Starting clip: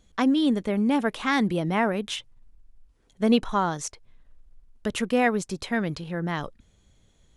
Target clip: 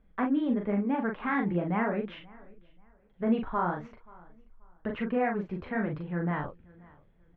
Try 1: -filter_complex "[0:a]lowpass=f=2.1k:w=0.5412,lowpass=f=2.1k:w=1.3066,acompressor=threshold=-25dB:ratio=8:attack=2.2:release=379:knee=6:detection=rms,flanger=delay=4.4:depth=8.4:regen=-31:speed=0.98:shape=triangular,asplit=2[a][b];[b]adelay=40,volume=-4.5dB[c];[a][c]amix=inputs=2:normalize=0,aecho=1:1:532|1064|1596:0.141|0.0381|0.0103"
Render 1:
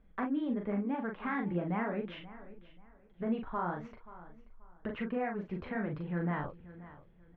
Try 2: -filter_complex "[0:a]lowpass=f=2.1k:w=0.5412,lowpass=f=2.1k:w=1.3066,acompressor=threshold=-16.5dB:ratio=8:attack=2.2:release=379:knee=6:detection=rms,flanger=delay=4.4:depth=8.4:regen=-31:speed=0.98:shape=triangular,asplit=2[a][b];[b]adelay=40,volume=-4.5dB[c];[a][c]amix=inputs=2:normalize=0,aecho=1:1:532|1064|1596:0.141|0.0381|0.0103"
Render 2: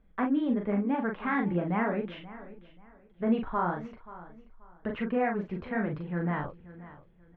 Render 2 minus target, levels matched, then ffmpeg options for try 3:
echo-to-direct +7 dB
-filter_complex "[0:a]lowpass=f=2.1k:w=0.5412,lowpass=f=2.1k:w=1.3066,acompressor=threshold=-16.5dB:ratio=8:attack=2.2:release=379:knee=6:detection=rms,flanger=delay=4.4:depth=8.4:regen=-31:speed=0.98:shape=triangular,asplit=2[a][b];[b]adelay=40,volume=-4.5dB[c];[a][c]amix=inputs=2:normalize=0,aecho=1:1:532|1064:0.0631|0.017"

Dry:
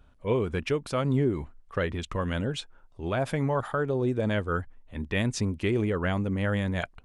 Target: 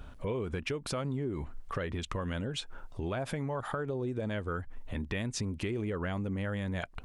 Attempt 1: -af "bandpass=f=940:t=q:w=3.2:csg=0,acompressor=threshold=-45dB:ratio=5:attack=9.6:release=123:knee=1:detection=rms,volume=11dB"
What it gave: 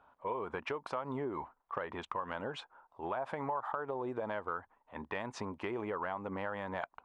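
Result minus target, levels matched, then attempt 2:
1000 Hz band +8.0 dB
-af "acompressor=threshold=-45dB:ratio=5:attack=9.6:release=123:knee=1:detection=rms,volume=11dB"

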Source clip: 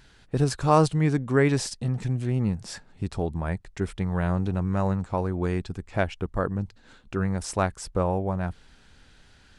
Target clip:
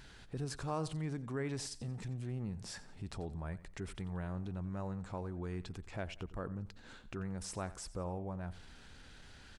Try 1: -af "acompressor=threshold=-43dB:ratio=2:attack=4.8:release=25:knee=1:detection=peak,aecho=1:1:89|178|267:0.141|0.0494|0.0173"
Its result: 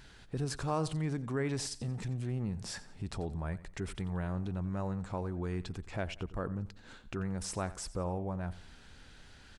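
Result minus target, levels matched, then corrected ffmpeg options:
compressor: peak gain reduction -5 dB
-af "acompressor=threshold=-52.5dB:ratio=2:attack=4.8:release=25:knee=1:detection=peak,aecho=1:1:89|178|267:0.141|0.0494|0.0173"

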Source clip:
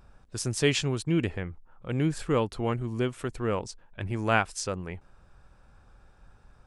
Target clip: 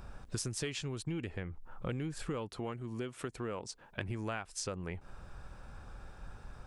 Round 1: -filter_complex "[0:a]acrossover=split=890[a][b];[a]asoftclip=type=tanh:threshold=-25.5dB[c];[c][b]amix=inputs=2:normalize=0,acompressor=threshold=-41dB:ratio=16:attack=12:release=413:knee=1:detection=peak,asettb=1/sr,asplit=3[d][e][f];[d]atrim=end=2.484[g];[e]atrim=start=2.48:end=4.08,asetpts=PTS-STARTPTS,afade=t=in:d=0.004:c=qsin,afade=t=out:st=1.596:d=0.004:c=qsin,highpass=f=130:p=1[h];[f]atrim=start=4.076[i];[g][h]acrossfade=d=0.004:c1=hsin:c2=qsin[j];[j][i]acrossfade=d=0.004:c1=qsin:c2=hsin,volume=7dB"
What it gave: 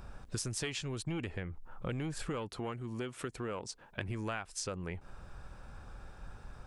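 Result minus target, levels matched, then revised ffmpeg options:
soft clip: distortion +8 dB
-filter_complex "[0:a]acrossover=split=890[a][b];[a]asoftclip=type=tanh:threshold=-18.5dB[c];[c][b]amix=inputs=2:normalize=0,acompressor=threshold=-41dB:ratio=16:attack=12:release=413:knee=1:detection=peak,asettb=1/sr,asplit=3[d][e][f];[d]atrim=end=2.484[g];[e]atrim=start=2.48:end=4.08,asetpts=PTS-STARTPTS,afade=t=in:d=0.004:c=qsin,afade=t=out:st=1.596:d=0.004:c=qsin,highpass=f=130:p=1[h];[f]atrim=start=4.076[i];[g][h]acrossfade=d=0.004:c1=hsin:c2=qsin[j];[j][i]acrossfade=d=0.004:c1=qsin:c2=hsin,volume=7dB"

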